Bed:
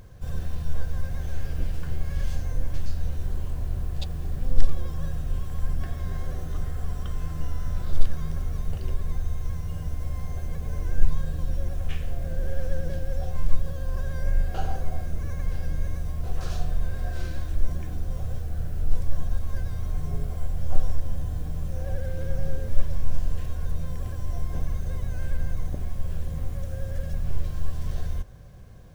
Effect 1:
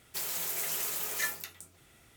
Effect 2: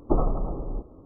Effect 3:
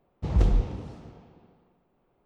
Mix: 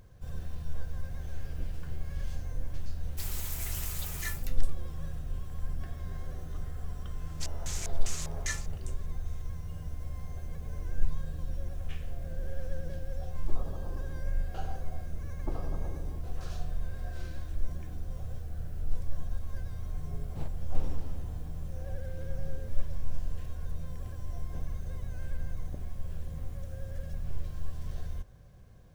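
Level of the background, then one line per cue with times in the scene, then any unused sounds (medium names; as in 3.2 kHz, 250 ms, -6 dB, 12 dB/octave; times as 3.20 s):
bed -8 dB
3.03 s: add 1 -5.5 dB + peaking EQ 440 Hz -7 dB
7.26 s: add 1 -4.5 dB + LFO low-pass square 2.5 Hz 690–6600 Hz
13.38 s: add 2 -15 dB + compressor with a negative ratio -23 dBFS
15.37 s: add 2 -11 dB + compression, threshold -21 dBFS
20.13 s: add 3 -12 dB + compressor with a negative ratio -31 dBFS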